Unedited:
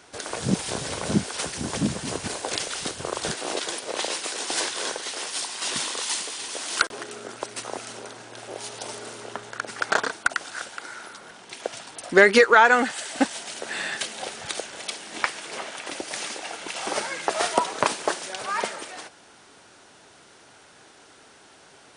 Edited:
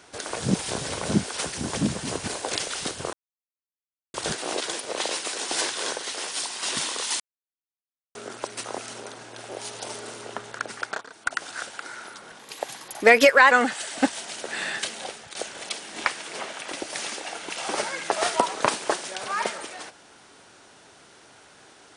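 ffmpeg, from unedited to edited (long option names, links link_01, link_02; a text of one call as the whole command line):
ffmpeg -i in.wav -filter_complex "[0:a]asplit=9[link_01][link_02][link_03][link_04][link_05][link_06][link_07][link_08][link_09];[link_01]atrim=end=3.13,asetpts=PTS-STARTPTS,afade=type=out:start_time=3.126:duration=0.004:curve=hsin,apad=pad_dur=1.01[link_10];[link_02]atrim=start=3.13:end=6.19,asetpts=PTS-STARTPTS,afade=type=in:duration=0.004:curve=hsin,afade=type=out:start_time=3.056:duration=0.004:curve=hsin[link_11];[link_03]atrim=start=6.19:end=7.14,asetpts=PTS-STARTPTS,volume=0[link_12];[link_04]atrim=start=7.14:end=10.02,asetpts=PTS-STARTPTS,afade=type=in:duration=0.004:curve=hsin,afade=type=out:start_time=2.52:duration=0.36:silence=0.133352[link_13];[link_05]atrim=start=10.02:end=10.07,asetpts=PTS-STARTPTS,volume=-17.5dB[link_14];[link_06]atrim=start=10.07:end=11.384,asetpts=PTS-STARTPTS,afade=type=in:duration=0.36:silence=0.133352[link_15];[link_07]atrim=start=11.38:end=12.69,asetpts=PTS-STARTPTS,asetrate=51597,aresample=44100[link_16];[link_08]atrim=start=12.686:end=14.53,asetpts=PTS-STARTPTS,afade=type=out:start_time=1.464:duration=0.38:silence=0.223872[link_17];[link_09]atrim=start=14.53,asetpts=PTS-STARTPTS,afade=type=in:duration=0.004:curve=hsin:silence=0.223872[link_18];[link_10][link_11][link_12][link_13][link_14][link_15]concat=n=6:v=0:a=1[link_19];[link_19][link_16]acrossfade=duration=0.004:curve1=hsin:curve2=hsin[link_20];[link_17][link_18]concat=n=2:v=0:a=1[link_21];[link_20][link_21]acrossfade=duration=0.004:curve1=hsin:curve2=hsin" out.wav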